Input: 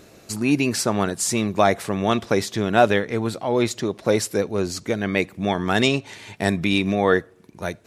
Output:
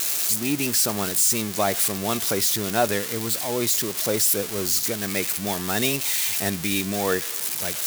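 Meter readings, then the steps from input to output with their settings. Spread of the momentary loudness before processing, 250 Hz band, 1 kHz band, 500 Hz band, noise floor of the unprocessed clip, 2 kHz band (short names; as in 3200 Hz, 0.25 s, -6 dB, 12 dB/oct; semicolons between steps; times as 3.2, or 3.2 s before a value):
7 LU, -6.0 dB, -5.5 dB, -6.0 dB, -50 dBFS, -4.0 dB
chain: switching spikes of -9 dBFS; gain -6 dB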